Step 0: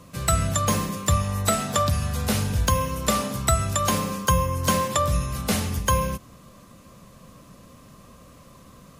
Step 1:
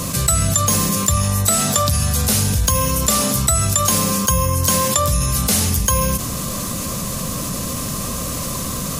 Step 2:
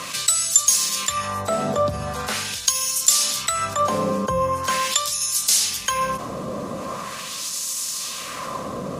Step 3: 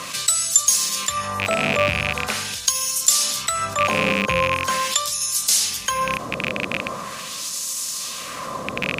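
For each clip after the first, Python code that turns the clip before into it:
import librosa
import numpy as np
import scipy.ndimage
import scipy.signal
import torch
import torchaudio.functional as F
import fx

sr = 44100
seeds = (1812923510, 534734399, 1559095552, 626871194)

y1 = fx.bass_treble(x, sr, bass_db=2, treble_db=12)
y1 = fx.env_flatten(y1, sr, amount_pct=70)
y1 = y1 * librosa.db_to_amplitude(-3.5)
y2 = fx.filter_lfo_bandpass(y1, sr, shape='sine', hz=0.42, low_hz=490.0, high_hz=6600.0, q=1.1)
y2 = y2 * librosa.db_to_amplitude(4.0)
y3 = fx.rattle_buzz(y2, sr, strikes_db=-31.0, level_db=-8.0)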